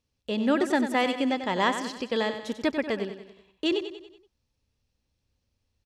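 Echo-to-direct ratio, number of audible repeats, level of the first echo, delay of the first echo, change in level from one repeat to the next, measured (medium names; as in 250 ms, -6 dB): -8.5 dB, 5, -9.5 dB, 94 ms, -6.0 dB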